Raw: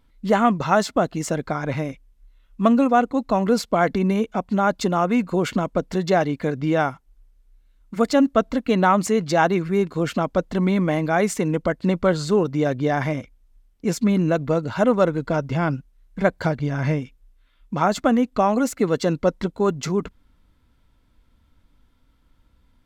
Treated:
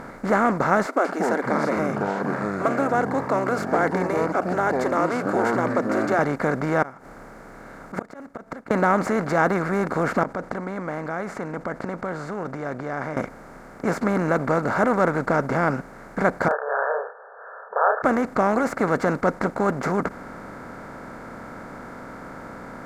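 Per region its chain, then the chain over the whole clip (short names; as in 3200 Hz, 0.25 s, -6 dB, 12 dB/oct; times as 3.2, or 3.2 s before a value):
0.86–6.19 brick-wall FIR high-pass 260 Hz + echoes that change speed 0.185 s, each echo -7 st, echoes 3, each echo -6 dB + cascading phaser rising 1.2 Hz
6.82–8.71 auto swell 0.122 s + flipped gate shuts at -24 dBFS, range -40 dB + short-mantissa float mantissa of 6-bit
10.23–13.17 air absorption 50 m + flipped gate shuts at -23 dBFS, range -28 dB + fast leveller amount 50%
16.48–18.04 brick-wall FIR band-pass 420–1800 Hz + doubler 31 ms -4.5 dB
whole clip: per-bin compression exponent 0.4; resonant high shelf 2400 Hz -6.5 dB, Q 3; gain -7.5 dB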